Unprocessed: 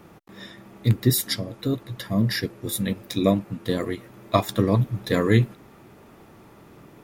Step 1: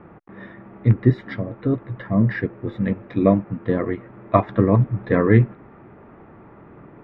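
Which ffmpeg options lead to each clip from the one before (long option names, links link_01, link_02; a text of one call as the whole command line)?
ffmpeg -i in.wav -af "lowpass=frequency=2000:width=0.5412,lowpass=frequency=2000:width=1.3066,volume=4dB" out.wav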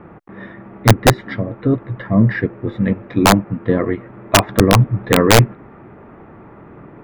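ffmpeg -i in.wav -af "aeval=exprs='(mod(2*val(0)+1,2)-1)/2':channel_layout=same,volume=5dB" out.wav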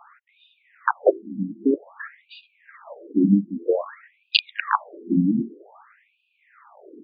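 ffmpeg -i in.wav -af "lowpass=frequency=8000:width_type=q:width=4.9,afftfilt=real='re*between(b*sr/1024,220*pow(3500/220,0.5+0.5*sin(2*PI*0.52*pts/sr))/1.41,220*pow(3500/220,0.5+0.5*sin(2*PI*0.52*pts/sr))*1.41)':imag='im*between(b*sr/1024,220*pow(3500/220,0.5+0.5*sin(2*PI*0.52*pts/sr))/1.41,220*pow(3500/220,0.5+0.5*sin(2*PI*0.52*pts/sr))*1.41)':win_size=1024:overlap=0.75,volume=-1dB" out.wav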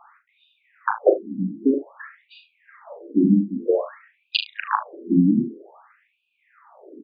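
ffmpeg -i in.wav -af "tiltshelf=frequency=970:gain=3.5,aecho=1:1:38|74:0.473|0.168,volume=-1.5dB" out.wav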